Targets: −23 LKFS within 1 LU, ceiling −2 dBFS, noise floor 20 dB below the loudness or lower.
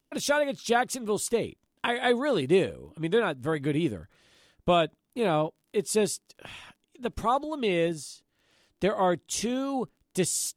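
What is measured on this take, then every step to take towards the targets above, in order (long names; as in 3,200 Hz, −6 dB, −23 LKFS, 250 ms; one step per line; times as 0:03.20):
crackle rate 19 per second; integrated loudness −28.0 LKFS; sample peak −12.0 dBFS; target loudness −23.0 LKFS
→ click removal
level +5 dB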